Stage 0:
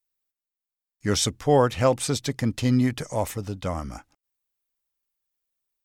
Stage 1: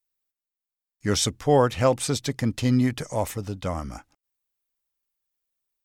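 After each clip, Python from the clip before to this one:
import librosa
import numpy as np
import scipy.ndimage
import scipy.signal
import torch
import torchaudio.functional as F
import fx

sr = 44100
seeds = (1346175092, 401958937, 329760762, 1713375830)

y = x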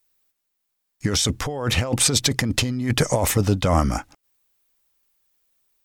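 y = fx.over_compress(x, sr, threshold_db=-29.0, ratio=-1.0)
y = y * 10.0 ** (8.0 / 20.0)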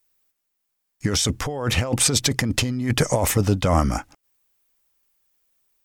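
y = fx.peak_eq(x, sr, hz=3900.0, db=-2.5, octaves=0.41)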